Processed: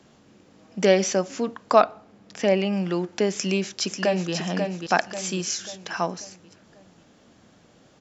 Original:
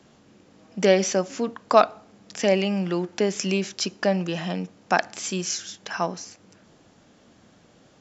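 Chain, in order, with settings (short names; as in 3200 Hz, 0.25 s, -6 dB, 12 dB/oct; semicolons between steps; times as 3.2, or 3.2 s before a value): 1.76–2.73 high shelf 5000 Hz -10.5 dB; 3.33–4.32 echo throw 0.54 s, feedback 45%, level -5.5 dB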